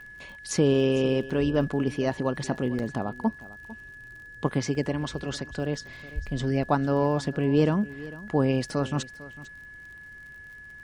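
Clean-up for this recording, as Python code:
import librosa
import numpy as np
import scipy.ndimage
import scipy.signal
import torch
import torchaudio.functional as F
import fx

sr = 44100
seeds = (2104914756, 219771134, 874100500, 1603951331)

y = fx.fix_declick_ar(x, sr, threshold=6.5)
y = fx.notch(y, sr, hz=1700.0, q=30.0)
y = fx.fix_interpolate(y, sr, at_s=(1.3, 2.79, 3.39, 4.75, 8.28), length_ms=1.5)
y = fx.fix_echo_inverse(y, sr, delay_ms=450, level_db=-18.0)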